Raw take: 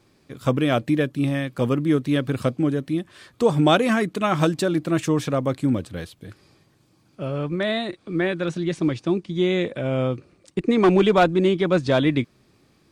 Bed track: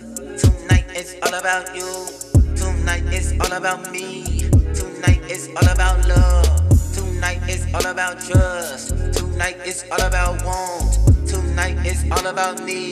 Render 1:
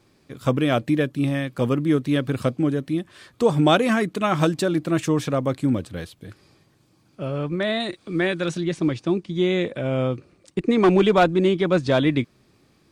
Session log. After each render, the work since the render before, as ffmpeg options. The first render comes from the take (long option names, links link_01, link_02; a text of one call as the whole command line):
ffmpeg -i in.wav -filter_complex "[0:a]asettb=1/sr,asplit=3[link_01][link_02][link_03];[link_01]atrim=end=7.804[link_04];[link_02]atrim=start=7.8:end=8.61,asetpts=PTS-STARTPTS,afade=type=in:duration=0.004:curve=qsin,afade=type=out:start_time=0.806:duration=0.004:curve=qsin,highshelf=frequency=3100:gain=8[link_05];[link_03]atrim=start=8.606[link_06];[link_04][link_05]acrossfade=duration=0.004:curve1=hsin:curve2=qsin[link_07];[link_07][link_06]acrossfade=duration=0.004:curve1=qsin:curve2=hsin" out.wav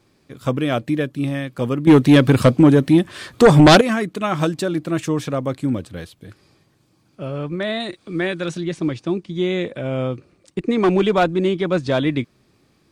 ffmpeg -i in.wav -filter_complex "[0:a]asettb=1/sr,asplit=3[link_01][link_02][link_03];[link_01]atrim=end=1.874[link_04];[link_02]atrim=start=1.87:end=3.81,asetpts=PTS-STARTPTS,afade=type=in:duration=0.004:curve=qsin,afade=type=out:start_time=1.936:duration=0.004:curve=qsin,aeval=exprs='0.596*sin(PI/2*2.51*val(0)/0.596)':channel_layout=same[link_05];[link_03]atrim=start=3.806[link_06];[link_04][link_05]acrossfade=duration=0.004:curve1=hsin:curve2=qsin[link_07];[link_07][link_06]acrossfade=duration=0.004:curve1=qsin:curve2=hsin" out.wav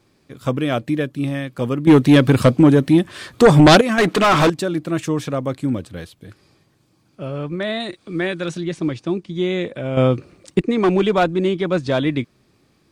ffmpeg -i in.wav -filter_complex "[0:a]asettb=1/sr,asplit=3[link_01][link_02][link_03];[link_01]atrim=end=3.984[link_04];[link_02]atrim=start=3.98:end=4.5,asetpts=PTS-STARTPTS,afade=type=in:duration=0.004:curve=qsin,afade=type=out:start_time=0.516:duration=0.004:curve=qsin,asplit=2[link_05][link_06];[link_06]highpass=frequency=720:poles=1,volume=29dB,asoftclip=type=tanh:threshold=-6.5dB[link_07];[link_05][link_07]amix=inputs=2:normalize=0,lowpass=frequency=3100:poles=1,volume=-6dB[link_08];[link_03]atrim=start=4.496[link_09];[link_04][link_08]acrossfade=duration=0.004:curve1=hsin:curve2=qsin[link_10];[link_10][link_09]acrossfade=duration=0.004:curve1=qsin:curve2=hsin,asplit=3[link_11][link_12][link_13];[link_11]atrim=end=9.972[link_14];[link_12]atrim=start=9.968:end=10.622,asetpts=PTS-STARTPTS,volume=8dB[link_15];[link_13]atrim=start=10.618[link_16];[link_14][link_15]acrossfade=duration=0.004:curve1=hsin:curve2=hsin[link_17];[link_17][link_16]acrossfade=duration=0.004:curve1=hsin:curve2=hsin" out.wav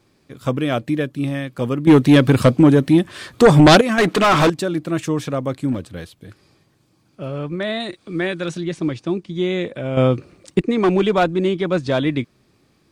ffmpeg -i in.wav -filter_complex "[0:a]asettb=1/sr,asplit=3[link_01][link_02][link_03];[link_01]atrim=end=5.724[link_04];[link_02]atrim=start=5.72:end=7.39,asetpts=PTS-STARTPTS,afade=type=in:duration=0.004:curve=qsin,afade=type=out:start_time=1.666:duration=0.004:curve=qsin,volume=17.5dB,asoftclip=hard,volume=-17.5dB[link_05];[link_03]atrim=start=7.386[link_06];[link_04][link_05]acrossfade=duration=0.004:curve1=hsin:curve2=qsin[link_07];[link_07][link_06]acrossfade=duration=0.004:curve1=qsin:curve2=hsin" out.wav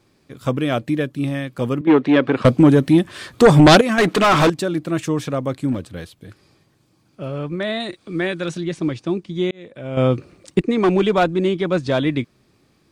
ffmpeg -i in.wav -filter_complex "[0:a]asettb=1/sr,asplit=3[link_01][link_02][link_03];[link_01]atrim=end=1.814[link_04];[link_02]atrim=start=1.81:end=2.45,asetpts=PTS-STARTPTS,afade=type=in:duration=0.004:curve=qsin,afade=type=out:start_time=0.636:duration=0.004:curve=qsin,highpass=300,lowpass=2500[link_05];[link_03]atrim=start=2.446[link_06];[link_04][link_05]acrossfade=duration=0.004:curve1=hsin:curve2=qsin[link_07];[link_07][link_06]acrossfade=duration=0.004:curve1=qsin:curve2=hsin,asplit=2[link_08][link_09];[link_08]atrim=end=9.51,asetpts=PTS-STARTPTS,afade=type=out:start_time=9.506:duration=0.004:curve=hsin[link_10];[link_09]atrim=start=9.51,asetpts=PTS-STARTPTS,afade=type=in:duration=0.62[link_11];[link_10][link_11]concat=n=2:v=0:a=1" out.wav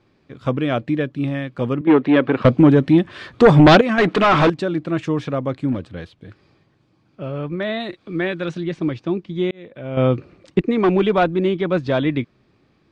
ffmpeg -i in.wav -af "lowpass=3500" out.wav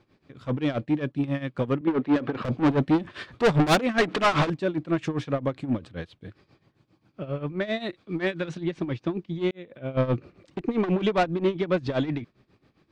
ffmpeg -i in.wav -af "asoftclip=type=tanh:threshold=-15dB,tremolo=f=7.5:d=0.82" out.wav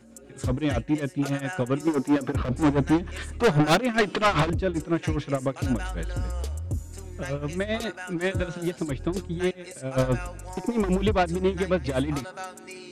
ffmpeg -i in.wav -i bed.wav -filter_complex "[1:a]volume=-17dB[link_01];[0:a][link_01]amix=inputs=2:normalize=0" out.wav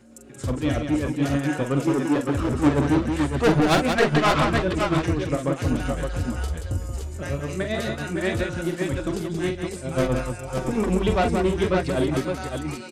ffmpeg -i in.wav -af "aecho=1:1:43|46|179|556|569:0.447|0.141|0.501|0.316|0.562" out.wav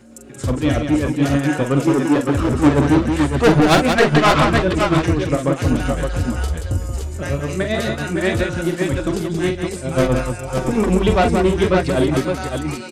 ffmpeg -i in.wav -af "volume=6dB,alimiter=limit=-3dB:level=0:latency=1" out.wav